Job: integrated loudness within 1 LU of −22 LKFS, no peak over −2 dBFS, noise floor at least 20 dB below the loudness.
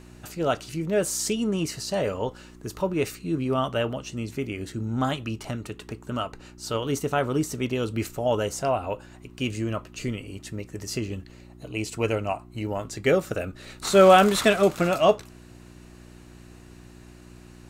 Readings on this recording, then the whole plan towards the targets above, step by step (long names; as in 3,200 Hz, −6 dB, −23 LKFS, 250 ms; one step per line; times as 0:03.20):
mains hum 60 Hz; hum harmonics up to 360 Hz; level of the hum −48 dBFS; integrated loudness −25.5 LKFS; sample peak −3.5 dBFS; target loudness −22.0 LKFS
→ hum removal 60 Hz, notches 6
level +3.5 dB
brickwall limiter −2 dBFS